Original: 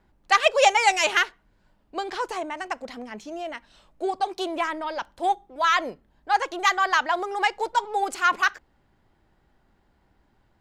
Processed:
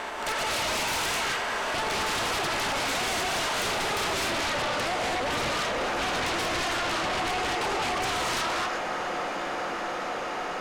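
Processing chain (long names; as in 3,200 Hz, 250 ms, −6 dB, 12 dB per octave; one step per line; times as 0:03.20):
compressor on every frequency bin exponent 0.4
source passing by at 0:04.14, 34 m/s, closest 13 metres
downward compressor 20 to 1, threshold −40 dBFS, peak gain reduction 27 dB
reverb whose tail is shaped and stops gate 280 ms rising, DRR −3 dB
sine wavefolder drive 15 dB, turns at −25 dBFS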